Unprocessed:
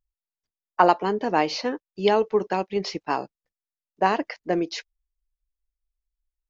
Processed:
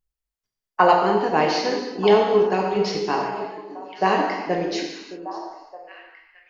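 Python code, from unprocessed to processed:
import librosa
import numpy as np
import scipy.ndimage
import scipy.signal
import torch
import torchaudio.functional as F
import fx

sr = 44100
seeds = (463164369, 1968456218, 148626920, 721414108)

y = fx.echo_stepped(x, sr, ms=617, hz=310.0, octaves=1.4, feedback_pct=70, wet_db=-9.0)
y = fx.rev_gated(y, sr, seeds[0], gate_ms=400, shape='falling', drr_db=-1.0)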